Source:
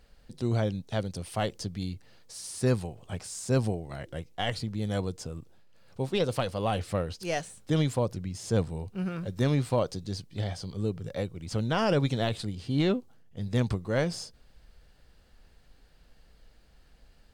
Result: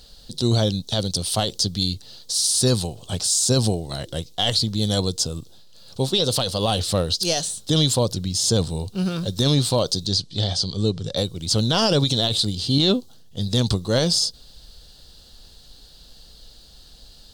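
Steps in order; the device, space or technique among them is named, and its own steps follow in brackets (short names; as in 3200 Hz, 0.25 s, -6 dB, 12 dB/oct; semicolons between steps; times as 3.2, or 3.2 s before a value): 10.07–11.17 Bessel low-pass 6800 Hz, order 4; over-bright horn tweeter (resonant high shelf 2900 Hz +9.5 dB, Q 3; limiter -18 dBFS, peak gain reduction 9 dB); gain +8.5 dB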